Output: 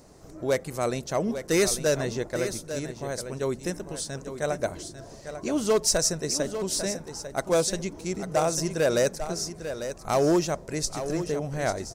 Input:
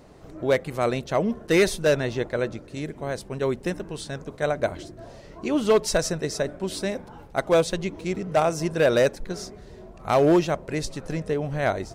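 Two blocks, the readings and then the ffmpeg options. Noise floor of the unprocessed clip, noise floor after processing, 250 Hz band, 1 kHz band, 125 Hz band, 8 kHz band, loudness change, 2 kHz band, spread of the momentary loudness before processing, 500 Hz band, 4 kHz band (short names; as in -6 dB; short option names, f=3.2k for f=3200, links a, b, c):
-46 dBFS, -46 dBFS, -3.0 dB, -3.5 dB, -3.0 dB, +7.0 dB, -2.5 dB, -4.5 dB, 14 LU, -3.5 dB, +1.5 dB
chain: -filter_complex "[0:a]highshelf=f=4.4k:t=q:w=1.5:g=8.5,asplit=2[a][b];[b]asoftclip=type=tanh:threshold=-14.5dB,volume=-8dB[c];[a][c]amix=inputs=2:normalize=0,aecho=1:1:847:0.316,volume=-6dB"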